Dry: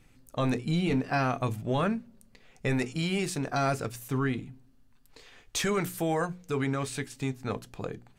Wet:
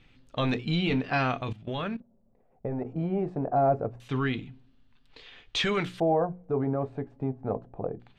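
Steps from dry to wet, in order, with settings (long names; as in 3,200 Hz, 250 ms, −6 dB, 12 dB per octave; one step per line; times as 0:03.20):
0:01.41–0:02.85: output level in coarse steps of 16 dB
auto-filter low-pass square 0.25 Hz 700–3,400 Hz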